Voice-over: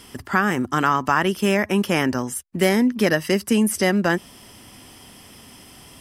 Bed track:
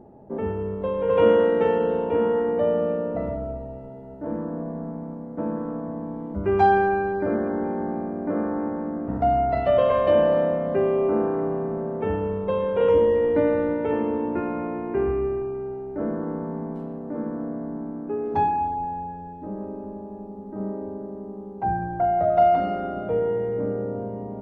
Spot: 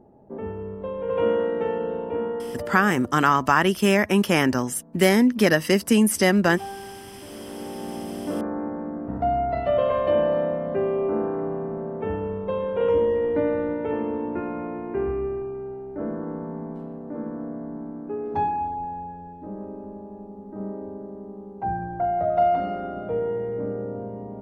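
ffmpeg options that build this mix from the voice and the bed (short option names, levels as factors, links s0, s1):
-filter_complex "[0:a]adelay=2400,volume=1.06[s0];[1:a]volume=3.55,afade=t=out:st=2.15:d=0.79:silence=0.211349,afade=t=in:st=7.29:d=0.89:silence=0.158489[s1];[s0][s1]amix=inputs=2:normalize=0"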